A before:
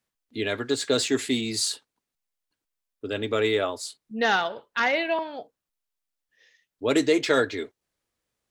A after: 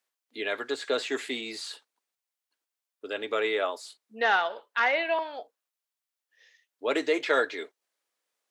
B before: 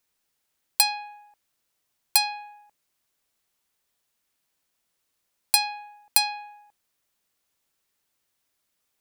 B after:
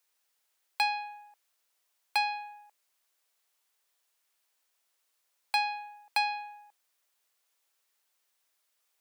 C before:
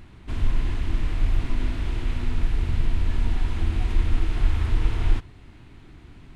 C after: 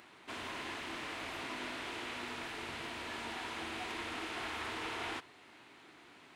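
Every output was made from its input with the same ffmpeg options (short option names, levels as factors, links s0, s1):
-filter_complex "[0:a]highpass=510,acrossover=split=3200[s0][s1];[s1]acompressor=threshold=0.00562:ratio=4:attack=1:release=60[s2];[s0][s2]amix=inputs=2:normalize=0"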